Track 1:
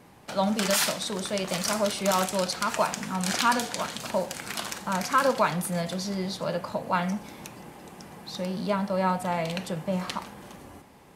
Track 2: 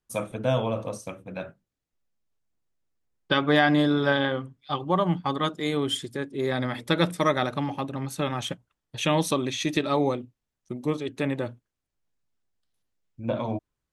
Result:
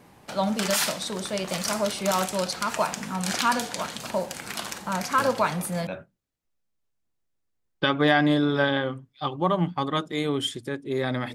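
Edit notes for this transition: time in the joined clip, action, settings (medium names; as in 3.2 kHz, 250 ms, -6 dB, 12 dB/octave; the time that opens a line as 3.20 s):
track 1
5.18 s: add track 2 from 0.66 s 0.69 s -8 dB
5.87 s: go over to track 2 from 1.35 s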